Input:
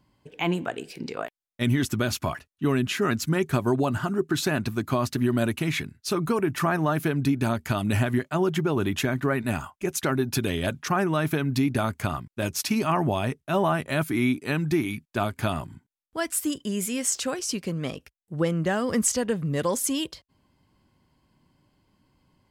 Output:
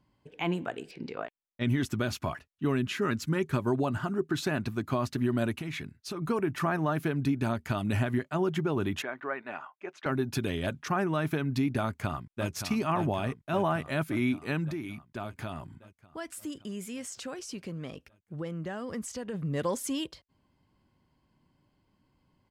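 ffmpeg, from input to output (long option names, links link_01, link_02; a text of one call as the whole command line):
ffmpeg -i in.wav -filter_complex "[0:a]asettb=1/sr,asplit=3[link_01][link_02][link_03];[link_01]atrim=end=0.914[link_04];[link_02]atrim=start=0.91:end=1.67,asetpts=PTS-STARTPTS,afade=type=in:duration=0.004:curve=qsin,afade=type=out:start_time=0.756:duration=0.004:curve=qsin,lowpass=4700[link_05];[link_03]atrim=start=1.666[link_06];[link_04][link_05]acrossfade=duration=0.004:curve1=hsin:curve2=qsin[link_07];[link_07][link_06]acrossfade=duration=0.004:curve1=qsin:curve2=hsin,asettb=1/sr,asplit=3[link_08][link_09][link_10];[link_08]atrim=end=2.764[link_11];[link_09]atrim=start=2.76:end=3.68,asetpts=PTS-STARTPTS,afade=type=in:duration=0.004:curve=qsin,afade=type=out:start_time=0.916:duration=0.004:curve=qsin,bandreject=frequency=710:width=5.6[link_12];[link_10]atrim=start=3.676[link_13];[link_11][link_12]acrossfade=duration=0.004:curve1=hsin:curve2=qsin[link_14];[link_14][link_13]acrossfade=duration=0.004:curve1=qsin:curve2=hsin,asettb=1/sr,asplit=3[link_15][link_16][link_17];[link_15]atrim=end=5.564[link_18];[link_16]atrim=start=5.56:end=6.22,asetpts=PTS-STARTPTS,afade=type=in:duration=0.004:curve=qsin,afade=type=out:start_time=0.656:duration=0.004:curve=qsin,acompressor=threshold=-27dB:ratio=6:attack=3.2:release=140:knee=1:detection=peak[link_19];[link_17]atrim=start=6.216[link_20];[link_18][link_19]acrossfade=duration=0.004:curve1=hsin:curve2=qsin[link_21];[link_21][link_20]acrossfade=duration=0.004:curve1=qsin:curve2=hsin,asettb=1/sr,asplit=3[link_22][link_23][link_24];[link_22]atrim=end=9.024[link_25];[link_23]atrim=start=9.02:end=10.06,asetpts=PTS-STARTPTS,afade=type=in:duration=0.004:curve=qsin,afade=type=out:start_time=1.036:duration=0.004:curve=qsin,highpass=560,lowpass=2300[link_26];[link_24]atrim=start=10.056[link_27];[link_25][link_26]acrossfade=duration=0.004:curve1=hsin:curve2=qsin[link_28];[link_28][link_27]acrossfade=duration=0.004:curve1=qsin:curve2=hsin,asplit=2[link_29][link_30];[link_30]afade=type=in:start_time=11.83:duration=0.01,afade=type=out:start_time=12.5:duration=0.01,aecho=0:1:570|1140|1710|2280|2850|3420|3990|4560|5130|5700|6270:0.375837|0.263086|0.18416|0.128912|0.0902386|0.063167|0.0442169|0.0309518|0.0216663|0.0151664|0.0106165[link_31];[link_29][link_31]amix=inputs=2:normalize=0,asplit=3[link_32][link_33][link_34];[link_32]afade=type=out:start_time=14.7:duration=0.02[link_35];[link_33]acompressor=threshold=-33dB:ratio=2:attack=3.2:release=140:knee=1:detection=peak,afade=type=in:start_time=14.7:duration=0.02,afade=type=out:start_time=19.33:duration=0.02[link_36];[link_34]afade=type=in:start_time=19.33:duration=0.02[link_37];[link_35][link_36][link_37]amix=inputs=3:normalize=0,highshelf=frequency=5900:gain=-8,volume=-4.5dB" out.wav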